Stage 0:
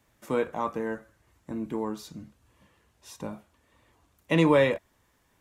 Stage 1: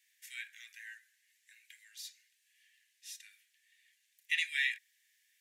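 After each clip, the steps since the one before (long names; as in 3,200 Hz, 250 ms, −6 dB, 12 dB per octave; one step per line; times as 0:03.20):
Butterworth high-pass 1,700 Hz 96 dB per octave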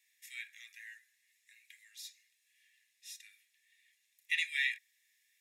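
notch comb filter 1,500 Hz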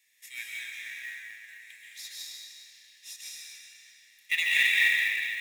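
comb and all-pass reverb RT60 2.9 s, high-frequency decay 0.9×, pre-delay 95 ms, DRR −5.5 dB
floating-point word with a short mantissa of 2 bits
level +5 dB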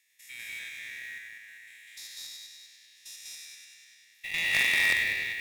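spectrum averaged block by block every 100 ms
harmonic generator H 4 −10 dB, 6 −13 dB, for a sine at −12 dBFS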